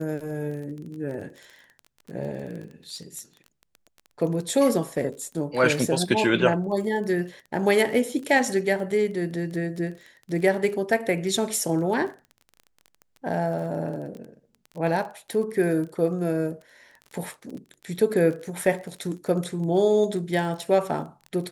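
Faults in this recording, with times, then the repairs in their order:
surface crackle 21 per second −34 dBFS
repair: click removal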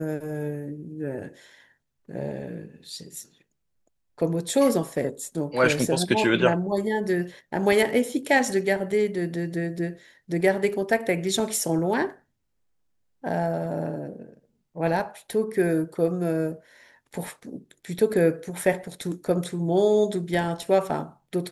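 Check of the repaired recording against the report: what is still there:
none of them is left

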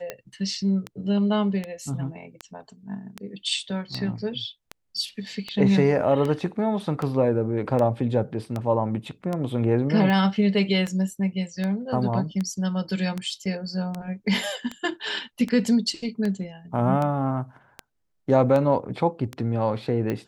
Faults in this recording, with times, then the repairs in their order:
scratch tick 78 rpm −16 dBFS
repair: click removal

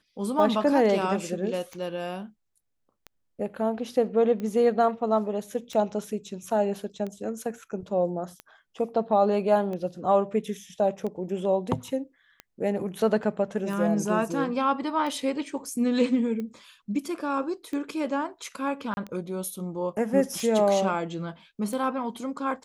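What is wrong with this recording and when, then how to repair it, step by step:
scratch tick 45 rpm −23 dBFS
0:18.94–0:18.97: drop-out 31 ms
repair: click removal
repair the gap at 0:18.94, 31 ms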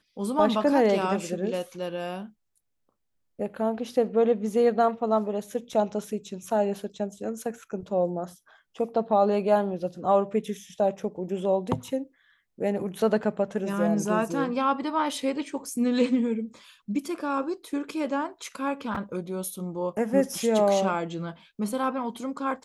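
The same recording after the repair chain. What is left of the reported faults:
none of them is left

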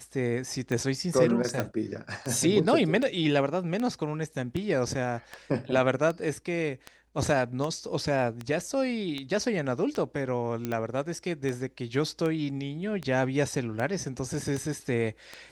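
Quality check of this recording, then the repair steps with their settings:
scratch tick 78 rpm −20 dBFS
0:01.60: click −14 dBFS
0:10.65: click −17 dBFS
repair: click removal

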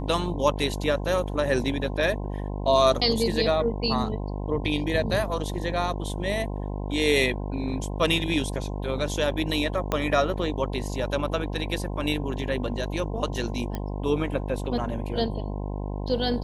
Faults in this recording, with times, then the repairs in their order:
mains buzz 50 Hz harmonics 21 −31 dBFS
0:09.92: click −11 dBFS
0:13.75: click −17 dBFS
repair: click removal
hum removal 50 Hz, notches 21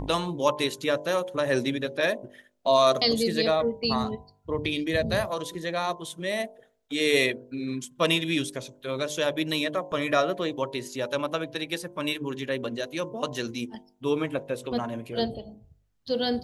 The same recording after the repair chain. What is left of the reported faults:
0:09.92: click

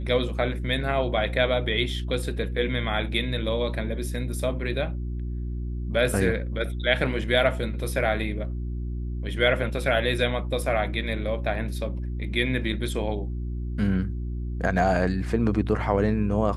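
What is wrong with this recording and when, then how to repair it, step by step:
mains hum 60 Hz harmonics 6 −30 dBFS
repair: hum removal 60 Hz, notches 6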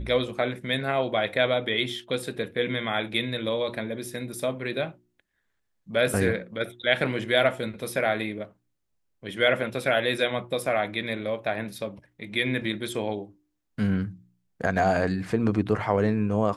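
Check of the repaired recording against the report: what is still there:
none of them is left

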